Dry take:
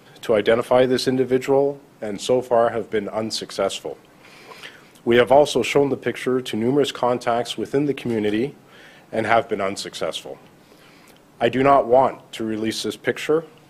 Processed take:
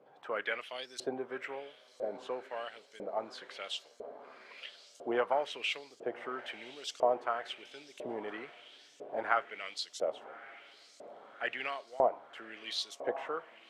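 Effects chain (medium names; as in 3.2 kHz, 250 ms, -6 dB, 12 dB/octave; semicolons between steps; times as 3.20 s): echo that smears into a reverb 1208 ms, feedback 61%, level -16 dB; LFO band-pass saw up 1 Hz 540–7000 Hz; trim -5.5 dB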